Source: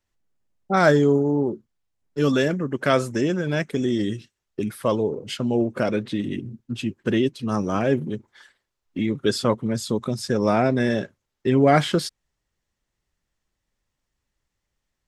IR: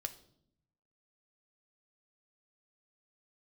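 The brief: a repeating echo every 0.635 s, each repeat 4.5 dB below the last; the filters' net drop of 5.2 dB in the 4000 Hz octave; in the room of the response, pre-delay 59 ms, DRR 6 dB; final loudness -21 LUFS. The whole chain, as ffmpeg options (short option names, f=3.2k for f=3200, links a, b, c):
-filter_complex "[0:a]equalizer=f=4k:t=o:g=-7,aecho=1:1:635|1270|1905|2540|3175|3810|4445|5080|5715:0.596|0.357|0.214|0.129|0.0772|0.0463|0.0278|0.0167|0.01,asplit=2[a][b];[1:a]atrim=start_sample=2205,adelay=59[c];[b][c]afir=irnorm=-1:irlink=0,volume=-4.5dB[d];[a][d]amix=inputs=2:normalize=0,volume=0.5dB"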